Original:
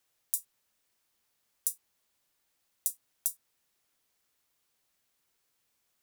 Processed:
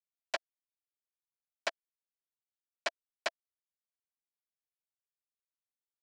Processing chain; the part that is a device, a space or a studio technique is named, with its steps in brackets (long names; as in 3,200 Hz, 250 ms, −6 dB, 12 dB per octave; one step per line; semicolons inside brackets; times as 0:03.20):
hand-held game console (bit reduction 4 bits; loudspeaker in its box 470–4,100 Hz, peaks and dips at 660 Hz +9 dB, 1,700 Hz +4 dB, 2,500 Hz −4 dB, 3,700 Hz −8 dB)
level +8.5 dB